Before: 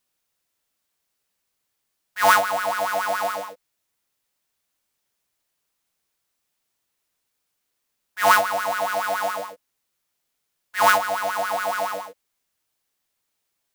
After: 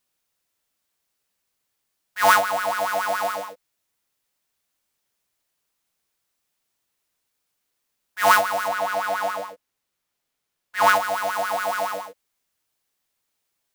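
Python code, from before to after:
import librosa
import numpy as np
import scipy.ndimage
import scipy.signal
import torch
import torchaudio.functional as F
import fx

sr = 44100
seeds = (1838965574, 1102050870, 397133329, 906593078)

y = fx.high_shelf(x, sr, hz=4800.0, db=-5.0, at=(8.68, 10.96))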